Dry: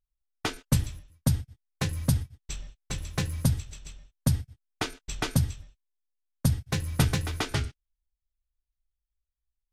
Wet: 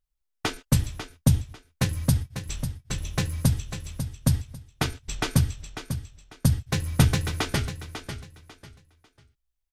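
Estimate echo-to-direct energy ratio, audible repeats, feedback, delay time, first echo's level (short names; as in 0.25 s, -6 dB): -9.0 dB, 3, 27%, 0.546 s, -9.5 dB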